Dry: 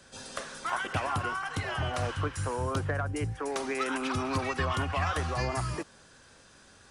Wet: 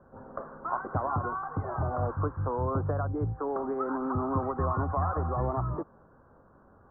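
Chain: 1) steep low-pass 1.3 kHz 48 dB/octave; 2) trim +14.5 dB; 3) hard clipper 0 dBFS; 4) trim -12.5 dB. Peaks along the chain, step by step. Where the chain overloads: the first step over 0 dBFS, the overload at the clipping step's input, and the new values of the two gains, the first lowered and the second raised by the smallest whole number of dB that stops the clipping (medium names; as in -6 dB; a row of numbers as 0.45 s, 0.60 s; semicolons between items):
-18.5 dBFS, -4.0 dBFS, -4.0 dBFS, -16.5 dBFS; nothing clips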